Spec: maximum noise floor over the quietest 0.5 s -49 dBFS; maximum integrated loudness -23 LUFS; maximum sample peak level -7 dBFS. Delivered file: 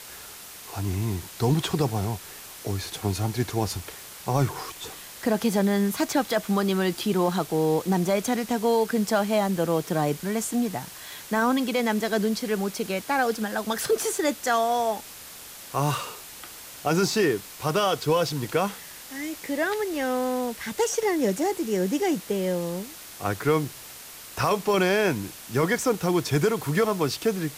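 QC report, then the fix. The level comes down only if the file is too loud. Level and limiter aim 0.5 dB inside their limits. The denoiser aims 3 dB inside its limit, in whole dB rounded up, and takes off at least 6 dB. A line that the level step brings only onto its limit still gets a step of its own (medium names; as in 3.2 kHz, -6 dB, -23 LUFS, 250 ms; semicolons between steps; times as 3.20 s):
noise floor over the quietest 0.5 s -43 dBFS: fail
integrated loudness -26.0 LUFS: pass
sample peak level -11.5 dBFS: pass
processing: noise reduction 9 dB, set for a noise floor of -43 dBFS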